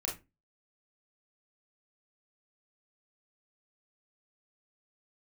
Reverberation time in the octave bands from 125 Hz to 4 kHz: 0.35, 0.35, 0.30, 0.20, 0.20, 0.15 s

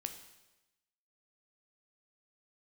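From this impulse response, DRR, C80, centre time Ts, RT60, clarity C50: 6.5 dB, 11.5 dB, 15 ms, 1.0 s, 9.5 dB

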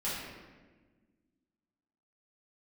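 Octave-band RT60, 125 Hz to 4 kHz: 1.9, 2.3, 1.6, 1.2, 1.2, 0.90 s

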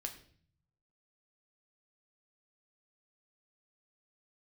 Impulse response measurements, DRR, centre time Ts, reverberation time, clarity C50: 3.5 dB, 12 ms, 0.50 s, 11.5 dB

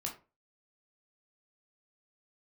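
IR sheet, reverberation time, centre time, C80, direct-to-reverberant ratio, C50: 0.30 s, 19 ms, 16.0 dB, -0.5 dB, 9.5 dB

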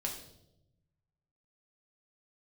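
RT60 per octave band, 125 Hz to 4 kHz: 1.7, 1.3, 1.0, 0.70, 0.55, 0.70 s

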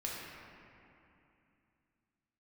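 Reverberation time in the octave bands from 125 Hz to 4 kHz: 3.4, 3.5, 2.7, 2.8, 2.7, 1.8 s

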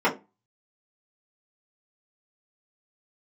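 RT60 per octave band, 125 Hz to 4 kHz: 0.35, 0.35, 0.25, 0.25, 0.20, 0.15 s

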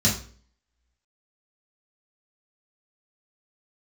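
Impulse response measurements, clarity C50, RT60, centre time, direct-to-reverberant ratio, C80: 7.5 dB, 0.45 s, 28 ms, -5.5 dB, 12.5 dB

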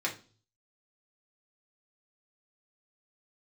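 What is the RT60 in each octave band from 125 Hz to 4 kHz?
0.80, 0.50, 0.40, 0.35, 0.30, 0.40 s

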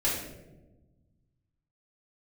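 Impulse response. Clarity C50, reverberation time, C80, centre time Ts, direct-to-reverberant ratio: 2.5 dB, 1.1 s, 5.5 dB, 56 ms, -8.5 dB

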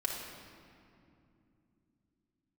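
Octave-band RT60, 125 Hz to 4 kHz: n/a, 4.6 s, 3.0 s, 2.4 s, 2.1 s, 1.6 s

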